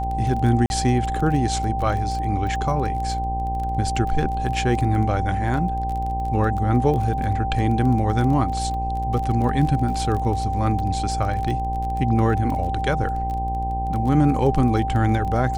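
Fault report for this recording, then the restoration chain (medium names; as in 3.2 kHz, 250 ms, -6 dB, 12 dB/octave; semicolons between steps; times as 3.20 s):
buzz 60 Hz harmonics 17 -27 dBFS
crackle 21 per s -27 dBFS
whine 780 Hz -25 dBFS
0.66–0.70 s: dropout 41 ms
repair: de-click; de-hum 60 Hz, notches 17; band-stop 780 Hz, Q 30; interpolate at 0.66 s, 41 ms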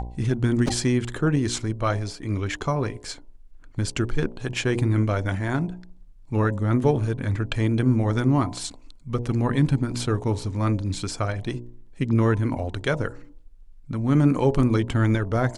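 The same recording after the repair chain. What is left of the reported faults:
nothing left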